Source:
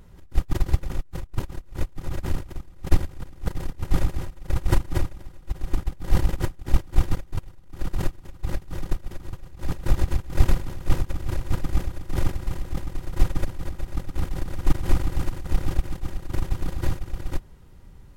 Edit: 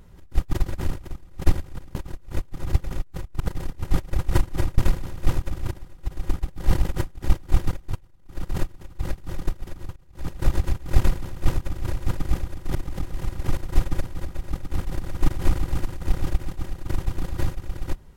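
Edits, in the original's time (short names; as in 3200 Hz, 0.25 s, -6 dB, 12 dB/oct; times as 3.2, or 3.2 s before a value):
0.72–1.39 swap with 2.17–3.4
4–4.37 cut
7.43–8.05 fade in linear, from -12.5 dB
9.4–9.87 fade in, from -19.5 dB
10.41–11.34 copy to 5.15
12.19–13.01 reverse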